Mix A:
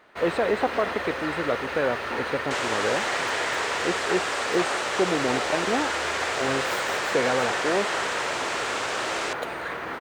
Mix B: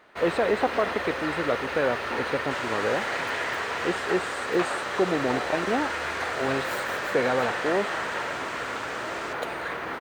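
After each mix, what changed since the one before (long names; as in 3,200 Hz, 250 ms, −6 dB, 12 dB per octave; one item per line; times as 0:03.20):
second sound −11.0 dB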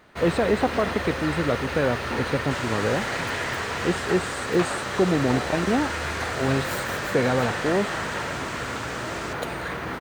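master: add bass and treble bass +13 dB, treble +6 dB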